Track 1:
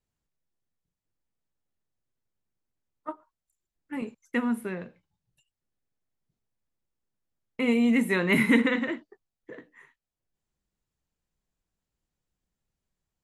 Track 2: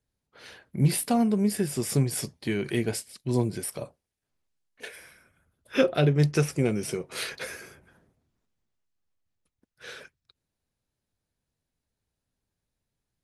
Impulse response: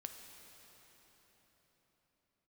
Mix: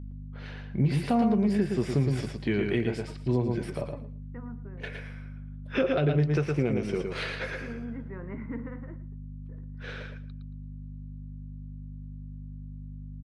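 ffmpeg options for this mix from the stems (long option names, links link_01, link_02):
-filter_complex "[0:a]lowpass=frequency=1500:width=0.5412,lowpass=frequency=1500:width=1.3066,volume=-12.5dB,asplit=2[link_01][link_02];[link_02]volume=-18.5dB[link_03];[1:a]lowpass=2900,aeval=exprs='val(0)+0.01*(sin(2*PI*50*n/s)+sin(2*PI*2*50*n/s)/2+sin(2*PI*3*50*n/s)/3+sin(2*PI*4*50*n/s)/4+sin(2*PI*5*50*n/s)/5)':channel_layout=same,volume=2dB,asplit=3[link_04][link_05][link_06];[link_05]volume=-5.5dB[link_07];[link_06]apad=whole_len=583481[link_08];[link_01][link_08]sidechaincompress=threshold=-39dB:ratio=8:attack=8.1:release=155[link_09];[link_03][link_07]amix=inputs=2:normalize=0,aecho=0:1:113|226|339:1|0.17|0.0289[link_10];[link_09][link_04][link_10]amix=inputs=3:normalize=0,alimiter=limit=-15.5dB:level=0:latency=1:release=227"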